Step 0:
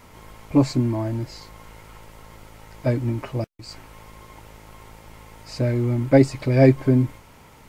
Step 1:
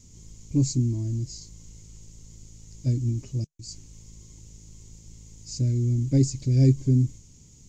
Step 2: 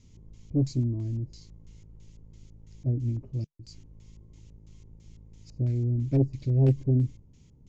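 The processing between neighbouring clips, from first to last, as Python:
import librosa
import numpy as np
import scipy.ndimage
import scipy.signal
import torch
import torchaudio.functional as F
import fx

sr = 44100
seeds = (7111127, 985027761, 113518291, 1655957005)

y1 = fx.curve_eq(x, sr, hz=(150.0, 390.0, 670.0, 1400.0, 4600.0, 6900.0, 9700.0), db=(0, -11, -27, -30, -4, 12, -18))
y2 = fx.filter_lfo_lowpass(y1, sr, shape='square', hz=3.0, low_hz=770.0, high_hz=3300.0, q=1.1)
y2 = fx.doppler_dist(y2, sr, depth_ms=0.38)
y2 = F.gain(torch.from_numpy(y2), -3.0).numpy()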